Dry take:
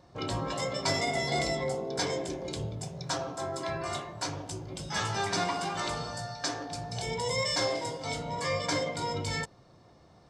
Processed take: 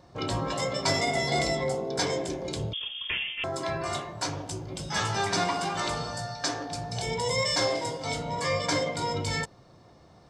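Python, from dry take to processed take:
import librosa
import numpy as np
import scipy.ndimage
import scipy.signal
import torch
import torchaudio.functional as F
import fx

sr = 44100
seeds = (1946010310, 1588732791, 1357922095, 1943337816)

y = fx.freq_invert(x, sr, carrier_hz=3400, at=(2.73, 3.44))
y = y * 10.0 ** (3.0 / 20.0)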